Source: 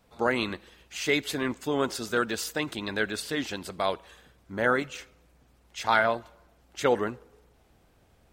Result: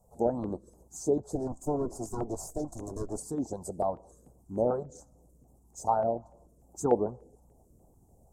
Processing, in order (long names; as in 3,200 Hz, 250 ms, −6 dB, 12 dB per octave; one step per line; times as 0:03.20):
0:01.35–0:03.18: lower of the sound and its delayed copy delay 2.9 ms
treble cut that deepens with the level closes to 2,200 Hz, closed at −22.5 dBFS
Chebyshev band-stop filter 800–7,200 Hz, order 3
harmonic and percussive parts rebalanced percussive +5 dB
notch on a step sequencer 6.8 Hz 290–3,000 Hz